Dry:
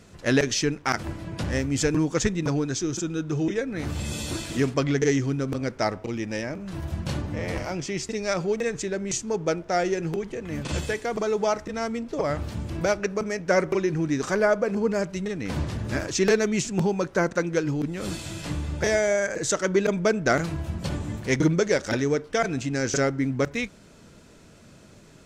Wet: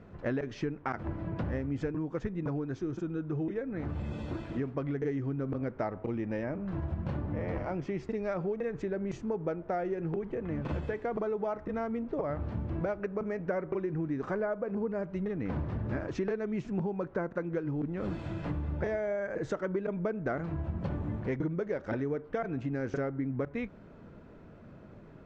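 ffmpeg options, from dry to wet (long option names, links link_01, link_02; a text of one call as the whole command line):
ffmpeg -i in.wav -filter_complex "[0:a]asplit=3[link_01][link_02][link_03];[link_01]atrim=end=1.922[link_04];[link_02]atrim=start=1.918:end=5.042,asetpts=PTS-STARTPTS,volume=-4dB[link_05];[link_03]atrim=start=5.038[link_06];[link_04][link_05]acrossfade=duration=0.004:curve1=hsin:curve2=hsin[link_07];[link_07][link_06]acrossfade=duration=0.004:curve1=hsin:curve2=hsin,lowpass=1400,acompressor=threshold=-30dB:ratio=6" out.wav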